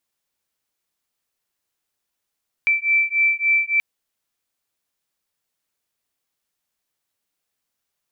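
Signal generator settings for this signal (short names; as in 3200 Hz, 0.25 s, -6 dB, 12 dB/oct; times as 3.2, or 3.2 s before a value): beating tones 2330 Hz, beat 3.5 Hz, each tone -19 dBFS 1.13 s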